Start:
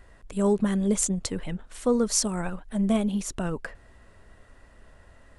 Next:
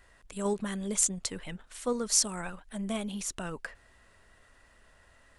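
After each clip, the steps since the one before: tilt shelf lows -5.5 dB, about 880 Hz; in parallel at -3 dB: level held to a coarse grid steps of 12 dB; on the sum: trim -8 dB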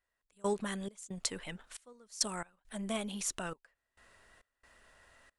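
bass shelf 250 Hz -7.5 dB; trance gate "..xx.xxx..x.xxxx" 68 bpm -24 dB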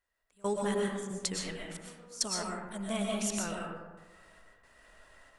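algorithmic reverb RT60 1.3 s, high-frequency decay 0.4×, pre-delay 80 ms, DRR -1.5 dB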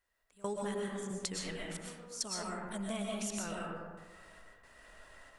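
compression 3:1, threshold -39 dBFS, peak gain reduction 10 dB; trim +2 dB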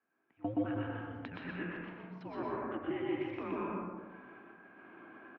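resonant low shelf 420 Hz -9 dB, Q 3; loudspeakers at several distances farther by 42 m -2 dB, 59 m -11 dB; mistuned SSB -300 Hz 350–2800 Hz

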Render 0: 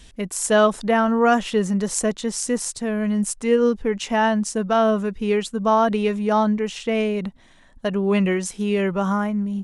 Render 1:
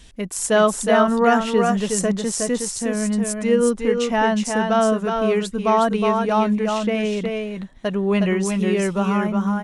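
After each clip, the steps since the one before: multi-tap echo 364/375 ms -4.5/-13 dB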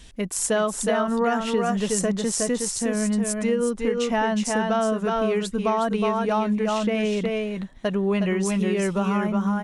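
compression, threshold -19 dBFS, peak gain reduction 8.5 dB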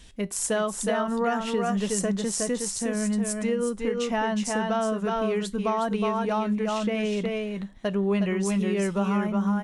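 feedback comb 100 Hz, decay 0.24 s, harmonics all, mix 40%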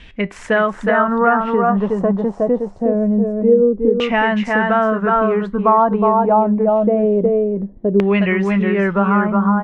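LFO low-pass saw down 0.25 Hz 370–2500 Hz; trim +8.5 dB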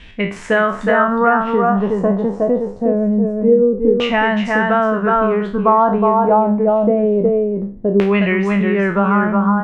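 spectral sustain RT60 0.40 s

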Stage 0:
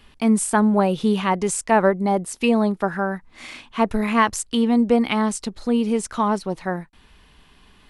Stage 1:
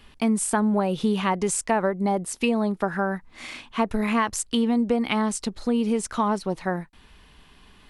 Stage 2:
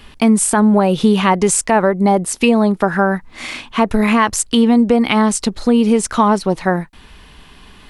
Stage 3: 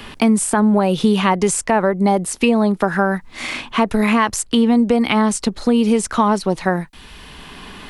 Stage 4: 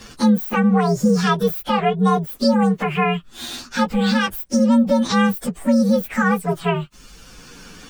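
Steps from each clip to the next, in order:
compression 4:1, threshold -19 dBFS, peak gain reduction 7.5 dB
loudness maximiser +11.5 dB; trim -1 dB
three bands compressed up and down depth 40%; trim -2.5 dB
frequency axis rescaled in octaves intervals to 125%

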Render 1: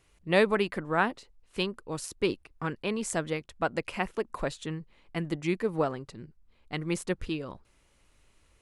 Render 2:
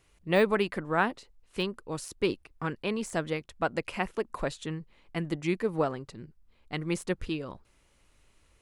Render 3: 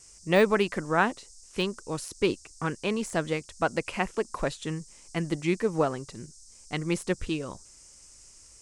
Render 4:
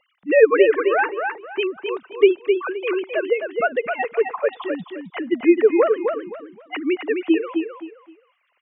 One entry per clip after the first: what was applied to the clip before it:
de-esser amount 75%
band noise 5–9 kHz -56 dBFS; trim +2.5 dB
formants replaced by sine waves; feedback delay 261 ms, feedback 25%, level -5.5 dB; trim +8 dB

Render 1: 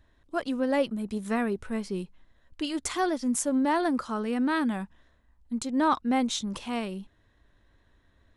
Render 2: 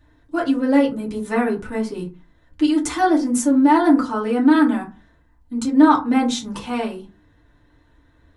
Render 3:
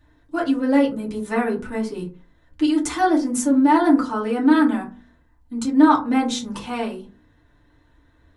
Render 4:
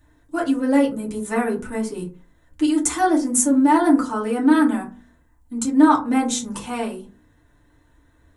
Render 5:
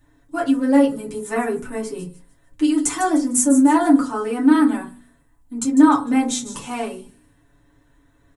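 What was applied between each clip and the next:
FDN reverb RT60 0.31 s, low-frequency decay 1.3×, high-frequency decay 0.45×, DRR -4.5 dB; trim +1.5 dB
de-hum 48.59 Hz, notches 13; trim -1 dB
resonant high shelf 5.9 kHz +7.5 dB, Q 1.5
comb 7.2 ms, depth 55%; feedback echo behind a high-pass 151 ms, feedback 36%, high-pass 5.4 kHz, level -10 dB; trim -1 dB

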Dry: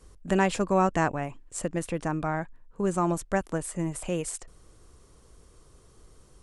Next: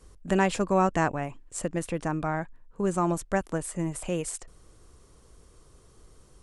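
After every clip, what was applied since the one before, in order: no audible change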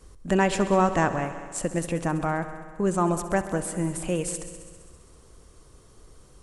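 in parallel at -8 dB: saturation -20 dBFS, distortion -12 dB; on the sum: multi-head delay 66 ms, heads all three, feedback 57%, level -17 dB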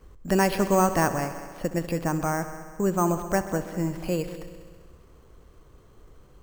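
careless resampling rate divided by 6×, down filtered, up hold

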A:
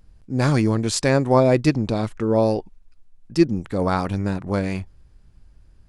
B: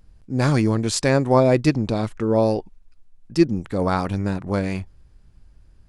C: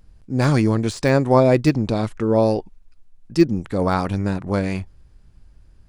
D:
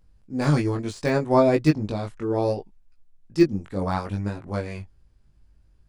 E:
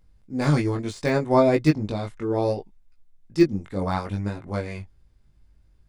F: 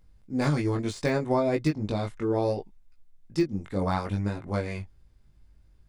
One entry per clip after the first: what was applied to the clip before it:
no audible change
de-esser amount 60%; trim +1.5 dB
chorus 0.67 Hz, delay 18.5 ms, depth 2.3 ms; upward expansion 1.5:1, over -27 dBFS; trim +1.5 dB
small resonant body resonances 2.1/3.6 kHz, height 9 dB
compression 6:1, threshold -21 dBFS, peak gain reduction 10 dB

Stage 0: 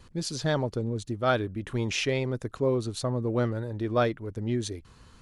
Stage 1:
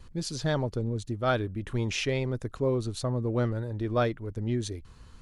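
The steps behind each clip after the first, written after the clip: bass shelf 69 Hz +11 dB; trim -2 dB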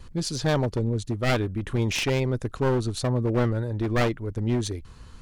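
one-sided wavefolder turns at -27 dBFS; trim +5 dB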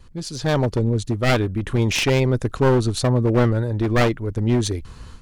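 level rider gain up to 11.5 dB; trim -3 dB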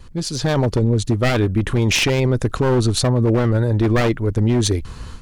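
peak limiter -14 dBFS, peak gain reduction 9 dB; trim +6 dB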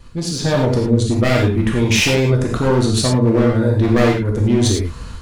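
gated-style reverb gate 130 ms flat, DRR -1.5 dB; trim -1.5 dB

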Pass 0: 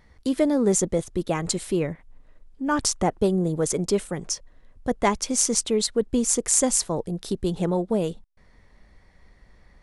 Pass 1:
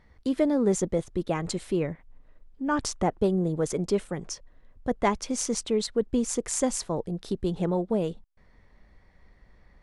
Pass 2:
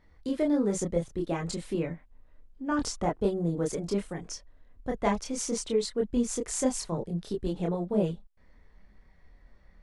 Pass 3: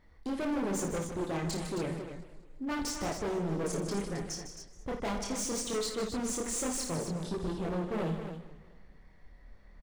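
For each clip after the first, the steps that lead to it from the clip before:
treble shelf 6.1 kHz -12 dB; trim -2.5 dB
chorus voices 6, 0.26 Hz, delay 27 ms, depth 3.6 ms
overload inside the chain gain 32 dB; loudspeakers at several distances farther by 19 m -8 dB, 53 m -10 dB, 92 m -9 dB; modulated delay 212 ms, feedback 43%, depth 178 cents, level -16 dB

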